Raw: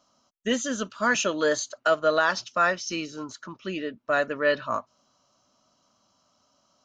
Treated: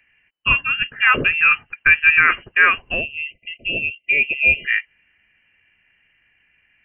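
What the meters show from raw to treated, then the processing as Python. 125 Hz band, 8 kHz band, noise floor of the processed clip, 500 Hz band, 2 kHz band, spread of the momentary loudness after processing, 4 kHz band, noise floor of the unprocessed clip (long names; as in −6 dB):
+7.5 dB, below −40 dB, −64 dBFS, −9.0 dB, +14.0 dB, 11 LU, +6.5 dB, −69 dBFS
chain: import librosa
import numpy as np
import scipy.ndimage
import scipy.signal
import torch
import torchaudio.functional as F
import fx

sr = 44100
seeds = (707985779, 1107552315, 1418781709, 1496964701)

y = fx.freq_invert(x, sr, carrier_hz=3000)
y = fx.spec_erase(y, sr, start_s=3.01, length_s=1.64, low_hz=690.0, high_hz=2000.0)
y = y * librosa.db_to_amplitude(8.5)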